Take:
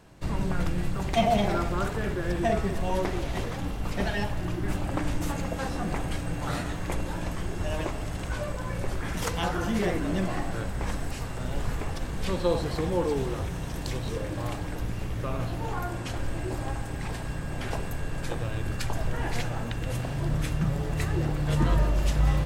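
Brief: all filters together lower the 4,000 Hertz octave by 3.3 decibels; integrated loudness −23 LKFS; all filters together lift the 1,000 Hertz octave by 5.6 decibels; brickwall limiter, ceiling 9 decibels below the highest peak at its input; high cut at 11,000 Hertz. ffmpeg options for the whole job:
ffmpeg -i in.wav -af "lowpass=11000,equalizer=frequency=1000:width_type=o:gain=8,equalizer=frequency=4000:width_type=o:gain=-5,volume=7.5dB,alimiter=limit=-11dB:level=0:latency=1" out.wav

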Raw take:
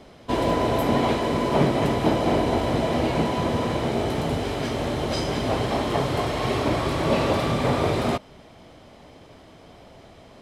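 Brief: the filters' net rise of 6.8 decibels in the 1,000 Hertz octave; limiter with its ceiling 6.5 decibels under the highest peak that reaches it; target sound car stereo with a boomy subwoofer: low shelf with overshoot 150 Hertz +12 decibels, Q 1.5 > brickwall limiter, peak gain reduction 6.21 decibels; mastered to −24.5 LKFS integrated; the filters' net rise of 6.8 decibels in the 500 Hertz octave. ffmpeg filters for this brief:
ffmpeg -i in.wav -af "equalizer=frequency=500:width_type=o:gain=8,equalizer=frequency=1000:width_type=o:gain=6,alimiter=limit=-9.5dB:level=0:latency=1,lowshelf=frequency=150:width_type=q:width=1.5:gain=12,volume=-5dB,alimiter=limit=-14.5dB:level=0:latency=1" out.wav

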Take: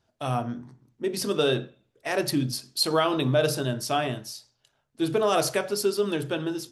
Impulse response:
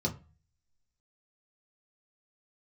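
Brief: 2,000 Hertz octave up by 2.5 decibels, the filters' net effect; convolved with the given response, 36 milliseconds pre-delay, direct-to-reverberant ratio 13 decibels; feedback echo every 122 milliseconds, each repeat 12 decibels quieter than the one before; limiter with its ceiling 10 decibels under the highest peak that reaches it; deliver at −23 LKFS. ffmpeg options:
-filter_complex "[0:a]equalizer=frequency=2000:width_type=o:gain=3.5,alimiter=limit=-19dB:level=0:latency=1,aecho=1:1:122|244|366:0.251|0.0628|0.0157,asplit=2[link_01][link_02];[1:a]atrim=start_sample=2205,adelay=36[link_03];[link_02][link_03]afir=irnorm=-1:irlink=0,volume=-18dB[link_04];[link_01][link_04]amix=inputs=2:normalize=0,volume=6dB"

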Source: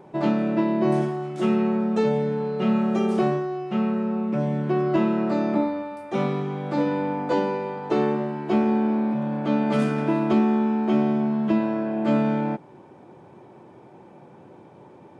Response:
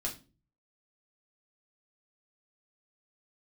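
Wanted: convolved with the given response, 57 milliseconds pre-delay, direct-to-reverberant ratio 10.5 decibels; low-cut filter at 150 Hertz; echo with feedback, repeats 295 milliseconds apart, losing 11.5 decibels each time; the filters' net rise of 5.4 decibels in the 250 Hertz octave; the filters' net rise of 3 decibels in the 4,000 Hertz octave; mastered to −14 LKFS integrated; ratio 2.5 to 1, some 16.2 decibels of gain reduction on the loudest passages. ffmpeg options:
-filter_complex "[0:a]highpass=150,equalizer=frequency=250:width_type=o:gain=7.5,equalizer=frequency=4000:width_type=o:gain=4,acompressor=threshold=-38dB:ratio=2.5,aecho=1:1:295|590|885:0.266|0.0718|0.0194,asplit=2[link_01][link_02];[1:a]atrim=start_sample=2205,adelay=57[link_03];[link_02][link_03]afir=irnorm=-1:irlink=0,volume=-12dB[link_04];[link_01][link_04]amix=inputs=2:normalize=0,volume=19.5dB"

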